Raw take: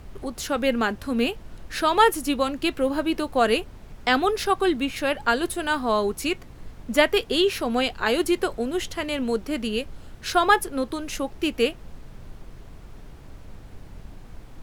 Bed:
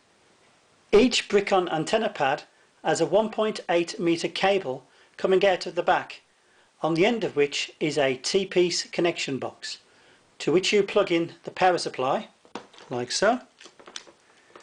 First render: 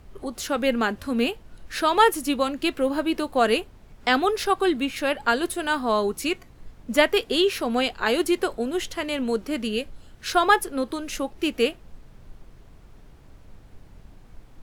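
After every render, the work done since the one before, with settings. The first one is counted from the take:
noise reduction from a noise print 6 dB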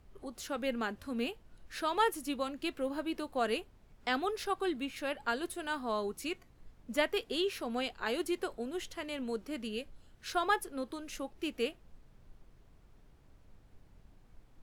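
level −12 dB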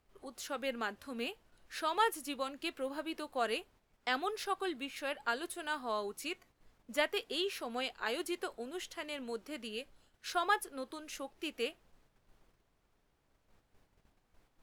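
noise gate −56 dBFS, range −6 dB
low-shelf EQ 280 Hz −12 dB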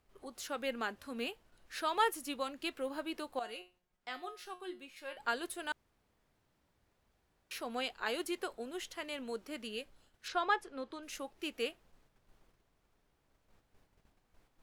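0:03.39–0:05.17: tuned comb filter 180 Hz, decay 0.28 s, mix 80%
0:05.72–0:07.51: fill with room tone
0:10.28–0:11.03: high-frequency loss of the air 94 metres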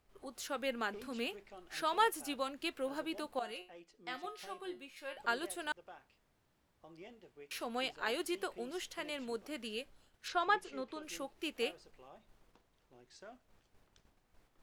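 mix in bed −32.5 dB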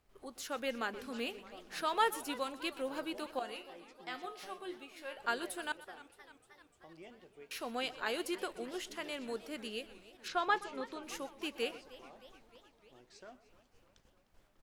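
single-tap delay 124 ms −18 dB
feedback echo with a swinging delay time 305 ms, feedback 67%, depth 181 cents, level −18 dB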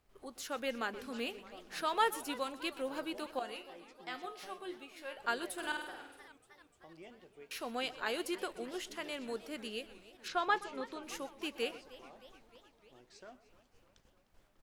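0:05.53–0:06.28: flutter between parallel walls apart 8.6 metres, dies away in 0.75 s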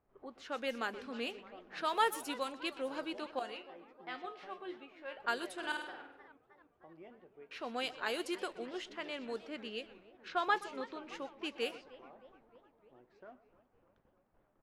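low-shelf EQ 79 Hz −11 dB
low-pass that shuts in the quiet parts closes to 1,200 Hz, open at −32.5 dBFS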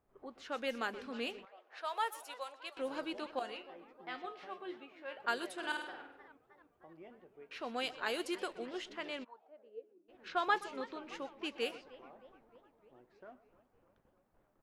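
0:01.45–0:02.77: four-pole ladder high-pass 480 Hz, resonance 30%
0:04.45–0:05.93: high-pass filter 95 Hz
0:09.23–0:10.08: resonant band-pass 1,100 Hz → 290 Hz, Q 9.6

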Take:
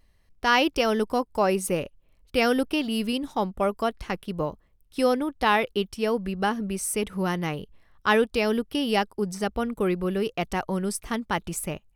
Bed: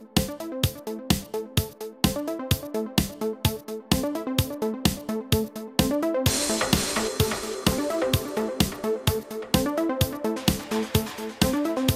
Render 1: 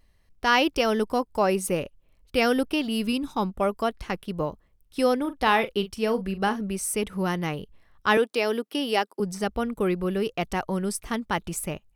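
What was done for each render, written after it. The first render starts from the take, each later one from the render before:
0:03.07–0:03.50: comb filter 0.8 ms, depth 45%
0:05.20–0:06.61: double-tracking delay 41 ms −12.5 dB
0:08.17–0:09.20: high-pass filter 260 Hz 24 dB per octave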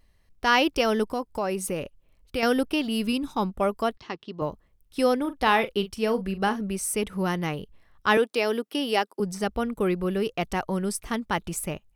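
0:01.12–0:02.43: downward compressor 2 to 1, threshold −27 dBFS
0:03.97–0:04.42: loudspeaker in its box 170–5,300 Hz, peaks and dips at 190 Hz −8 dB, 530 Hz −9 dB, 770 Hz −4 dB, 1,500 Hz −8 dB, 2,300 Hz −7 dB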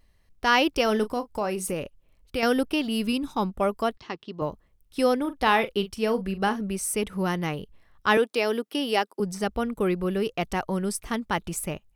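0:00.83–0:01.74: double-tracking delay 33 ms −13 dB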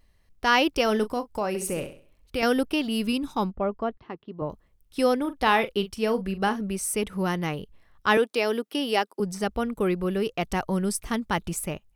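0:01.48–0:02.43: flutter between parallel walls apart 11.2 metres, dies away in 0.43 s
0:03.51–0:04.50: head-to-tape spacing loss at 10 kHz 41 dB
0:10.51–0:11.53: bass and treble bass +3 dB, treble +2 dB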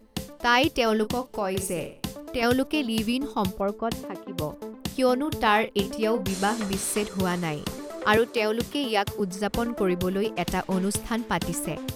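mix in bed −10.5 dB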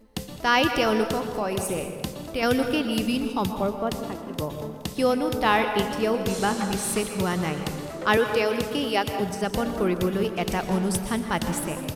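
repeating echo 211 ms, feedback 58%, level −19.5 dB
dense smooth reverb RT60 1.5 s, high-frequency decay 0.5×, pre-delay 105 ms, DRR 7 dB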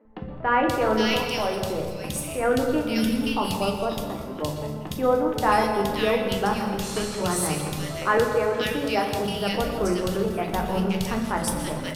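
three-band delay without the direct sound mids, lows, highs 50/530 ms, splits 230/2,000 Hz
rectangular room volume 110 cubic metres, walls mixed, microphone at 0.51 metres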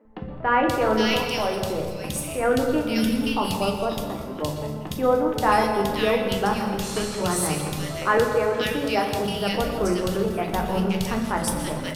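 level +1 dB

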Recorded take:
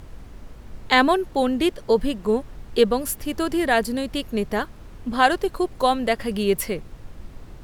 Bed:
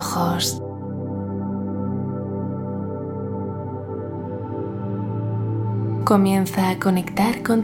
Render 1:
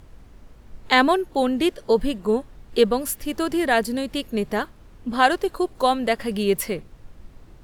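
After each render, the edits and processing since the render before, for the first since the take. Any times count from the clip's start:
noise reduction from a noise print 6 dB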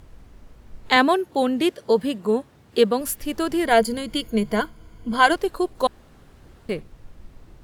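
0:00.96–0:03.01: high-pass filter 84 Hz 24 dB per octave
0:03.65–0:05.36: EQ curve with evenly spaced ripples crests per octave 1.8, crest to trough 11 dB
0:05.87–0:06.69: fill with room tone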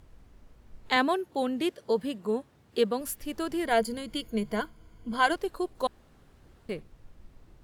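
level −8 dB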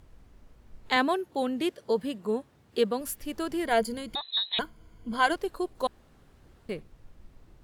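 0:04.15–0:04.59: voice inversion scrambler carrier 4,000 Hz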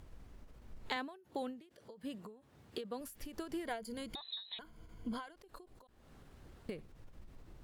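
downward compressor 6 to 1, threshold −37 dBFS, peak gain reduction 18 dB
every ending faded ahead of time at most 120 dB per second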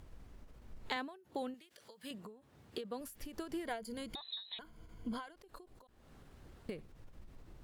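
0:01.54–0:02.11: tilt shelving filter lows −8.5 dB, about 930 Hz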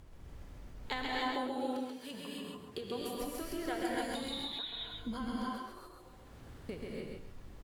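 repeating echo 134 ms, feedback 26%, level −4 dB
reverb whose tail is shaped and stops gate 320 ms rising, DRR −3 dB

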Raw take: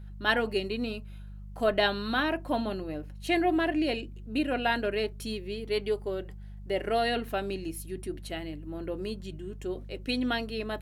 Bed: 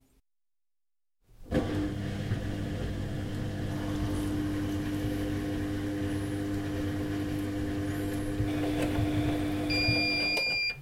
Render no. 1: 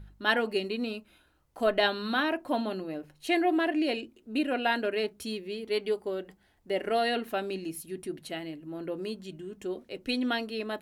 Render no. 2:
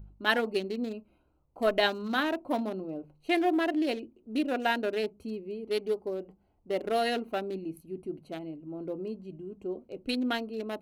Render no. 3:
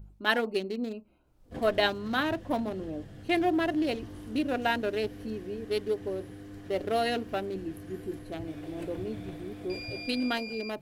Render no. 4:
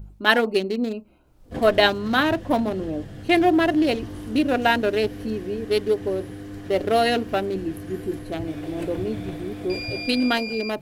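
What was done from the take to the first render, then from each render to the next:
hum removal 50 Hz, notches 4
adaptive Wiener filter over 25 samples; high-shelf EQ 11,000 Hz +10.5 dB
mix in bed −12.5 dB
level +8.5 dB

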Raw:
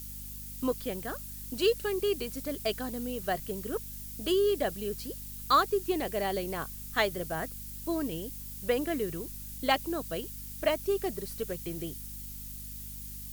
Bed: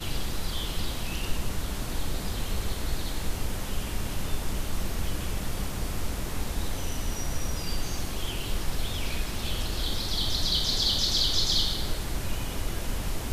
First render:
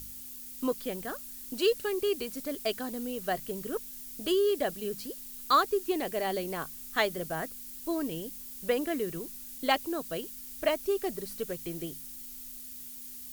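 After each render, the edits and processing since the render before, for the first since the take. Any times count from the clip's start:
hum removal 50 Hz, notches 4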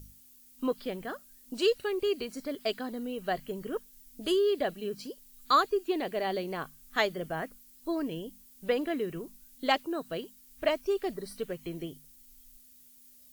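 noise reduction from a noise print 13 dB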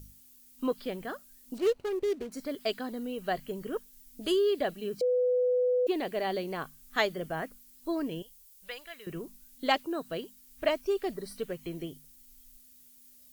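0:01.58–0:02.32: running median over 25 samples
0:05.01–0:05.87: beep over 498 Hz −23 dBFS
0:08.22–0:09.07: guitar amp tone stack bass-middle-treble 10-0-10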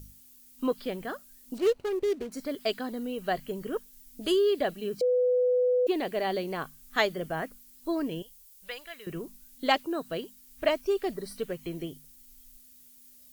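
level +2 dB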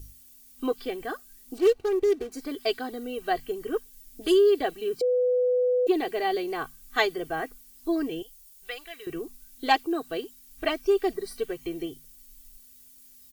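comb filter 2.6 ms, depth 79%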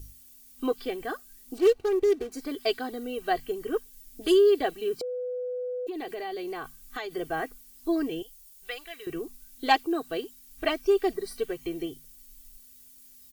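0:05.01–0:07.16: downward compressor 10 to 1, threshold −31 dBFS

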